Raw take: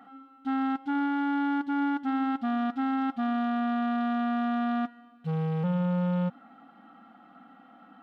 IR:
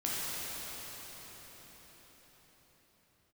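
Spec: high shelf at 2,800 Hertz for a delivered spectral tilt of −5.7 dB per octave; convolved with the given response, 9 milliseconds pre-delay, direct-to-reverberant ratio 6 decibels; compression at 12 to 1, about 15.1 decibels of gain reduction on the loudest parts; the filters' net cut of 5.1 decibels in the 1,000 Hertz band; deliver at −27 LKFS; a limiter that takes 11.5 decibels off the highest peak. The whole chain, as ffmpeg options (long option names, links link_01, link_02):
-filter_complex "[0:a]equalizer=frequency=1000:width_type=o:gain=-9,highshelf=frequency=2800:gain=6.5,acompressor=threshold=-41dB:ratio=12,alimiter=level_in=21dB:limit=-24dB:level=0:latency=1,volume=-21dB,asplit=2[link_01][link_02];[1:a]atrim=start_sample=2205,adelay=9[link_03];[link_02][link_03]afir=irnorm=-1:irlink=0,volume=-13.5dB[link_04];[link_01][link_04]amix=inputs=2:normalize=0,volume=25.5dB"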